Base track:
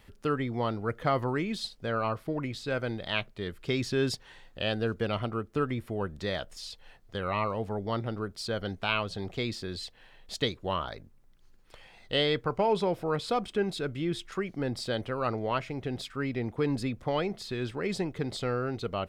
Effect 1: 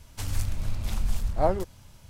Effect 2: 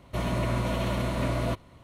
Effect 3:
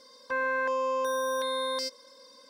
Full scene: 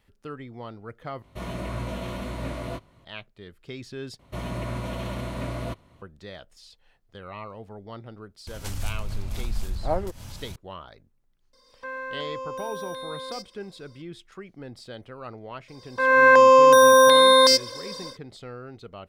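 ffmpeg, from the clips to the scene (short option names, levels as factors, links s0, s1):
-filter_complex "[2:a]asplit=2[s0][s1];[3:a]asplit=2[s2][s3];[0:a]volume=0.355[s4];[s0]flanger=delay=18.5:depth=4:speed=1.7[s5];[1:a]acompressor=mode=upward:threshold=0.0708:ratio=2.5:attack=3.2:release=140:knee=2.83:detection=peak[s6];[s3]dynaudnorm=f=300:g=3:m=6.68[s7];[s4]asplit=3[s8][s9][s10];[s8]atrim=end=1.224[s11];[s5]atrim=end=1.83,asetpts=PTS-STARTPTS,volume=0.841[s12];[s9]atrim=start=3.046:end=4.194[s13];[s1]atrim=end=1.83,asetpts=PTS-STARTPTS,volume=0.631[s14];[s10]atrim=start=6.016[s15];[s6]atrim=end=2.09,asetpts=PTS-STARTPTS,volume=0.75,afade=t=in:d=0.004:c=hsin,afade=t=out:st=2.086:d=0.004:c=hsin,adelay=8470[s16];[s2]atrim=end=2.49,asetpts=PTS-STARTPTS,volume=0.501,afade=t=in:d=0.004:c=hsin,afade=t=out:st=2.486:d=0.004:c=hsin,adelay=11530[s17];[s7]atrim=end=2.49,asetpts=PTS-STARTPTS,afade=t=in:d=0.004:c=hsin,afade=t=out:st=2.486:d=0.004:c=hsin,adelay=15680[s18];[s11][s12]acrossfade=d=0.004:c1=hsin:c2=hsin[s19];[s19][s13]acrossfade=d=0.004:c1=hsin:c2=hsin[s20];[s20][s14]acrossfade=d=0.004:c1=hsin:c2=hsin[s21];[s21][s15]acrossfade=d=0.004:c1=hsin:c2=hsin[s22];[s22][s16][s17][s18]amix=inputs=4:normalize=0"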